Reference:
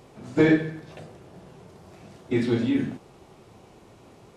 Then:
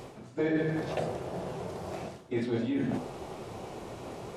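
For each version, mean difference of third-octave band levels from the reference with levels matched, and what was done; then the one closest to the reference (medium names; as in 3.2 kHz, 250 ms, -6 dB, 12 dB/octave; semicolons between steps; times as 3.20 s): 10.5 dB: hum notches 50/100/150/200/250/300 Hz; reverse; compression 8:1, threshold -38 dBFS, peak gain reduction 22.5 dB; reverse; dynamic bell 620 Hz, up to +7 dB, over -57 dBFS, Q 1.1; trim +8 dB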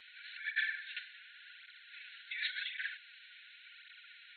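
19.5 dB: compressor with a negative ratio -28 dBFS, ratio -1; brick-wall FIR band-pass 1.4–4.3 kHz; cancelling through-zero flanger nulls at 0.9 Hz, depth 6 ms; trim +6.5 dB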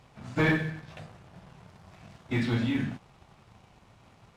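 3.5 dB: treble shelf 5.7 kHz -11 dB; waveshaping leveller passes 1; peaking EQ 380 Hz -14 dB 1.4 oct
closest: third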